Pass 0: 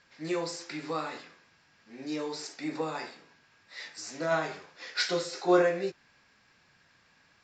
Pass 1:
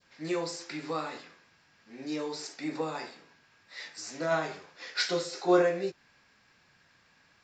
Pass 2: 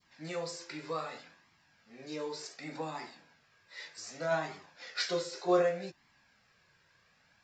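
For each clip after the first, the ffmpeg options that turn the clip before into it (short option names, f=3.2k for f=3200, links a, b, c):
-af "adynamicequalizer=threshold=0.00631:dfrequency=1700:dqfactor=0.84:tfrequency=1700:tqfactor=0.84:attack=5:release=100:ratio=0.375:range=2:mode=cutabove:tftype=bell"
-af "flanger=delay=0.9:depth=1.2:regen=-31:speed=0.66:shape=triangular"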